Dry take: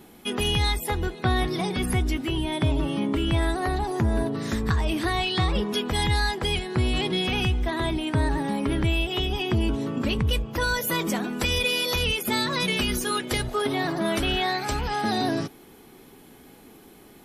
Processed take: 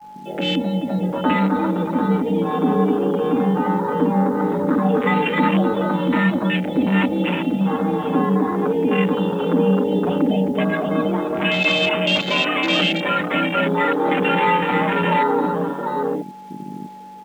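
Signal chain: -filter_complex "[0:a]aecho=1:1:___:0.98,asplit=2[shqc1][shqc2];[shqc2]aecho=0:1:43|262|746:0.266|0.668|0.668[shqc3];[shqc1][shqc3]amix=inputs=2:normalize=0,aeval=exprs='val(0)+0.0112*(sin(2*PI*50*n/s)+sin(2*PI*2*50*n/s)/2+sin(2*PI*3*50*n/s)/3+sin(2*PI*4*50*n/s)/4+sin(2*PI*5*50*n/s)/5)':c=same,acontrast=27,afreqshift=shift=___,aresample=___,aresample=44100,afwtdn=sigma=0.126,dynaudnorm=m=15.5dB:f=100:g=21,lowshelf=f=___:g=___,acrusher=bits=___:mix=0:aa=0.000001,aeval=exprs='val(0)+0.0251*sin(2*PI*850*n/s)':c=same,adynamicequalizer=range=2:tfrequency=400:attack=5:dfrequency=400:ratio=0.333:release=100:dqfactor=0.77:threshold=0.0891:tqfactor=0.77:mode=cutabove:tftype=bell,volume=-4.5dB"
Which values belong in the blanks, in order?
6.5, 140, 8000, 120, 10, 7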